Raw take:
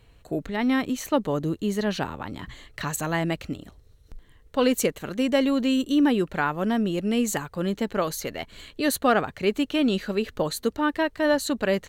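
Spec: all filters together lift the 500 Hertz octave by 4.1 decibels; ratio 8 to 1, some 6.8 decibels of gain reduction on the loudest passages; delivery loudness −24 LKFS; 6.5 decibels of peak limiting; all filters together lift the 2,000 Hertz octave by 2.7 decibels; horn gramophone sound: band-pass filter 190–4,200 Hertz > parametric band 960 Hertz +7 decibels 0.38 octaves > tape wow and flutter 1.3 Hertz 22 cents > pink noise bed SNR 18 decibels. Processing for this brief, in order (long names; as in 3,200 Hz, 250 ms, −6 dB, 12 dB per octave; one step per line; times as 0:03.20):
parametric band 500 Hz +4.5 dB
parametric band 2,000 Hz +3 dB
downward compressor 8 to 1, threshold −20 dBFS
brickwall limiter −17.5 dBFS
band-pass filter 190–4,200 Hz
parametric band 960 Hz +7 dB 0.38 octaves
tape wow and flutter 1.3 Hz 22 cents
pink noise bed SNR 18 dB
level +4.5 dB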